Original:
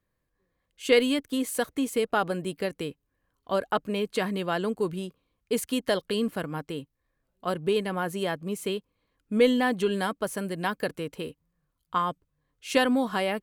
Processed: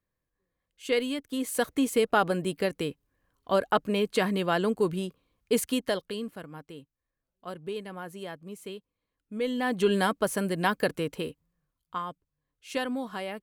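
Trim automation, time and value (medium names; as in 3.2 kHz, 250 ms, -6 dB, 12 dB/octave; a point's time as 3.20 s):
1.21 s -6 dB
1.68 s +2 dB
5.63 s +2 dB
6.33 s -10 dB
9.42 s -10 dB
9.89 s +3 dB
11.11 s +3 dB
12.05 s -8 dB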